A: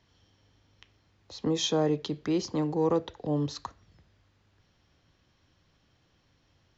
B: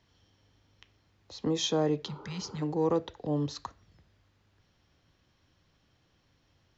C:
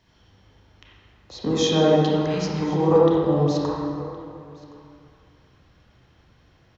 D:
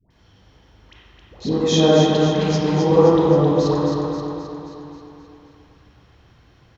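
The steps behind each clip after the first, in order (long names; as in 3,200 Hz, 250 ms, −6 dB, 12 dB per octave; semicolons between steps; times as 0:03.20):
healed spectral selection 0:02.10–0:02.60, 220–1,500 Hz before; level −1.5 dB
single-tap delay 1,067 ms −22 dB; convolution reverb RT60 2.2 s, pre-delay 23 ms, DRR −6 dB; level +4.5 dB
all-pass dispersion highs, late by 106 ms, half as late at 770 Hz; on a send: repeating echo 264 ms, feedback 54%, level −5.5 dB; on the sum: level +2.5 dB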